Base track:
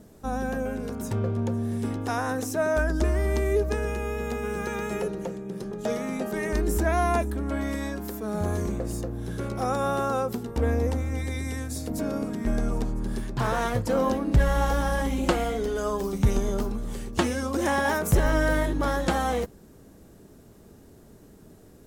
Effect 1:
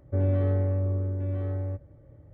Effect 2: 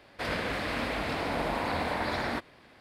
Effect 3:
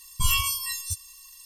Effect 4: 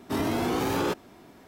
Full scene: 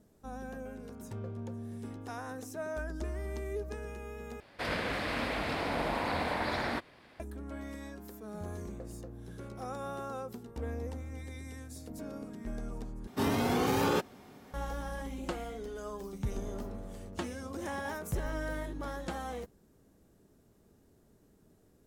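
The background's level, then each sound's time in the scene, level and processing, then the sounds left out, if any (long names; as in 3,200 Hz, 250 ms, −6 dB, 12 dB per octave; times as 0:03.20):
base track −13.5 dB
0:04.40: overwrite with 2 −2 dB
0:13.07: overwrite with 4 −0.5 dB + notch comb filter 330 Hz
0:16.18: mix in 1 −16.5 dB + lower of the sound and its delayed copy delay 4.1 ms
not used: 3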